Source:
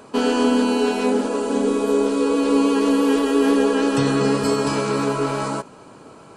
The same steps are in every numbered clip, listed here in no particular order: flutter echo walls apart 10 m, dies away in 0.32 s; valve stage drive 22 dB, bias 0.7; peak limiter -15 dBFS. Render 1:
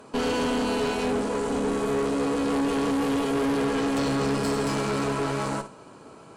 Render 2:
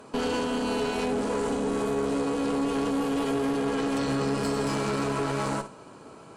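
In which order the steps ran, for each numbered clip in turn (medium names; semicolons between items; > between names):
flutter echo > valve stage > peak limiter; peak limiter > flutter echo > valve stage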